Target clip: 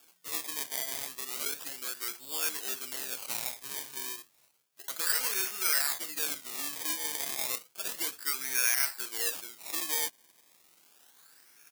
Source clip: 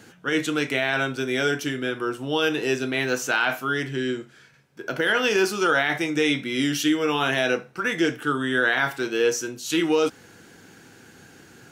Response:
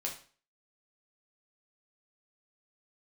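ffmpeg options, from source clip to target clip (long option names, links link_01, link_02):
-filter_complex "[0:a]acrusher=samples=22:mix=1:aa=0.000001:lfo=1:lforange=22:lforate=0.32,aderivative,asplit=2[link_01][link_02];[link_02]asetrate=29433,aresample=44100,atempo=1.49831,volume=-17dB[link_03];[link_01][link_03]amix=inputs=2:normalize=0"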